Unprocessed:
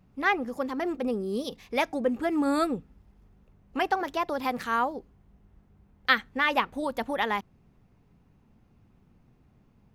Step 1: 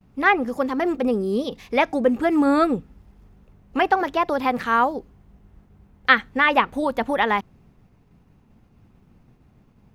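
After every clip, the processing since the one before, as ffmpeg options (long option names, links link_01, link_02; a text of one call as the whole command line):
ffmpeg -i in.wav -filter_complex "[0:a]agate=range=-33dB:threshold=-58dB:ratio=3:detection=peak,acrossover=split=3600[link_01][link_02];[link_02]acompressor=threshold=-54dB:ratio=4:attack=1:release=60[link_03];[link_01][link_03]amix=inputs=2:normalize=0,volume=7.5dB" out.wav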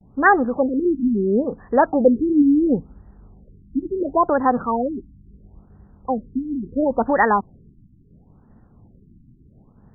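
ffmpeg -i in.wav -af "afftfilt=real='re*lt(b*sr/1024,330*pow(2000/330,0.5+0.5*sin(2*PI*0.73*pts/sr)))':imag='im*lt(b*sr/1024,330*pow(2000/330,0.5+0.5*sin(2*PI*0.73*pts/sr)))':win_size=1024:overlap=0.75,volume=4.5dB" out.wav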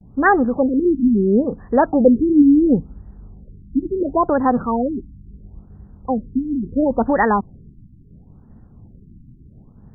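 ffmpeg -i in.wav -af "lowshelf=frequency=330:gain=9,volume=-1.5dB" out.wav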